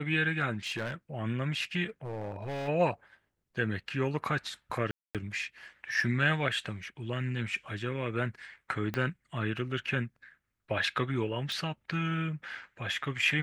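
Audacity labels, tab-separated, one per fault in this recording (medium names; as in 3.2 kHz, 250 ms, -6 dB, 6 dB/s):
0.540000	0.940000	clipped -29.5 dBFS
2.040000	2.690000	clipped -33.5 dBFS
4.910000	5.150000	dropout 237 ms
8.940000	8.940000	pop -19 dBFS
11.520000	11.520000	pop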